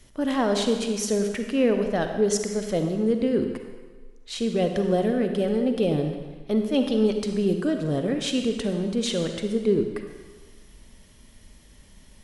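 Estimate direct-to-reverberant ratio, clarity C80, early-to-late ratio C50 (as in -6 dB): 5.0 dB, 7.0 dB, 5.5 dB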